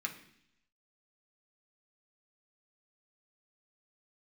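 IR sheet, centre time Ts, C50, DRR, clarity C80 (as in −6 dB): 13 ms, 10.5 dB, 1.0 dB, 14.0 dB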